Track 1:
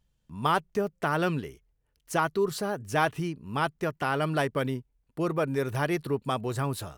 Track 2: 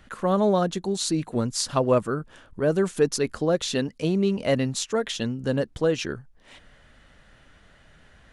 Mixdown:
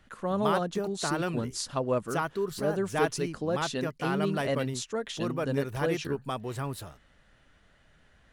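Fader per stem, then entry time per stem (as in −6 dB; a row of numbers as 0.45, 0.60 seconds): −4.5, −7.5 decibels; 0.00, 0.00 seconds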